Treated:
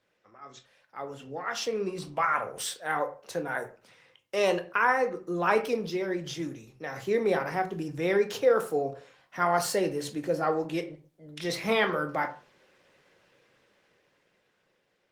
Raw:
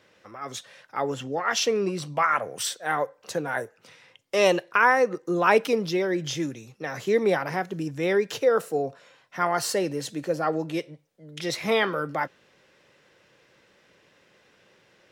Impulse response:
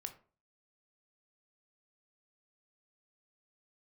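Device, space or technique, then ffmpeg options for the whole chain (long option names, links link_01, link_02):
far-field microphone of a smart speaker: -filter_complex "[1:a]atrim=start_sample=2205[link_01];[0:a][link_01]afir=irnorm=-1:irlink=0,highpass=frequency=99:poles=1,dynaudnorm=framelen=400:gausssize=9:maxgain=13dB,volume=-8.5dB" -ar 48000 -c:a libopus -b:a 24k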